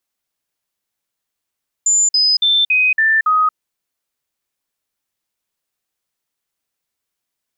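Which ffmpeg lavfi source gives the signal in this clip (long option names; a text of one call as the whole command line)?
ffmpeg -f lavfi -i "aevalsrc='0.299*clip(min(mod(t,0.28),0.23-mod(t,0.28))/0.005,0,1)*sin(2*PI*7100*pow(2,-floor(t/0.28)/2)*mod(t,0.28))':duration=1.68:sample_rate=44100" out.wav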